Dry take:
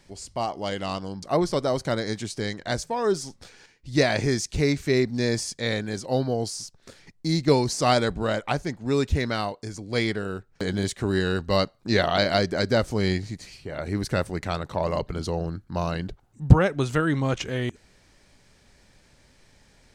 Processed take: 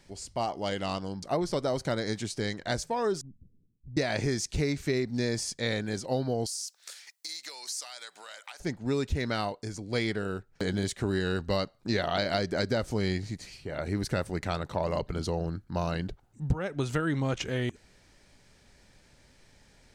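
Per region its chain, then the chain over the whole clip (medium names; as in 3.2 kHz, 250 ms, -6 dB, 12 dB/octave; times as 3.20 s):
3.21–3.97 s: inverse Chebyshev low-pass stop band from 1.4 kHz, stop band 80 dB + compression 3:1, threshold -40 dBFS
6.46–8.60 s: high-pass 780 Hz + compression 12:1, threshold -40 dBFS + tilt EQ +4 dB/octave
whole clip: band-stop 1.1 kHz, Q 21; compression 8:1, threshold -22 dBFS; trim -2 dB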